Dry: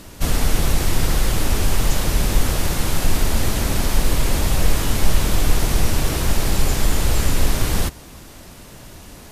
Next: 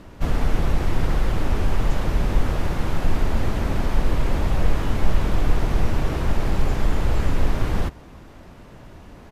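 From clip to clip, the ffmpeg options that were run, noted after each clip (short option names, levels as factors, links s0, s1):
-af "firequalizer=gain_entry='entry(980,0);entry(4100,-11);entry(9100,-19)':delay=0.05:min_phase=1,volume=0.794"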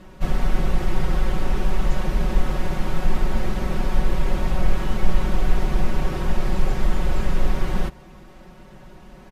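-af "aecho=1:1:5.4:0.91,volume=0.668"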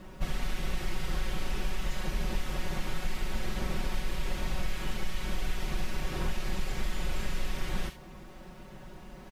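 -filter_complex "[0:a]acrossover=split=1800[s0][s1];[s0]acompressor=threshold=0.0708:ratio=6[s2];[s1]aecho=1:1:39|73:0.531|0.398[s3];[s2][s3]amix=inputs=2:normalize=0,acrusher=bits=10:mix=0:aa=0.000001,volume=0.708"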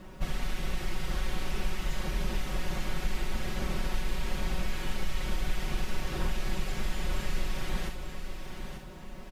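-af "aecho=1:1:891|1782|2673|3564:0.398|0.123|0.0383|0.0119"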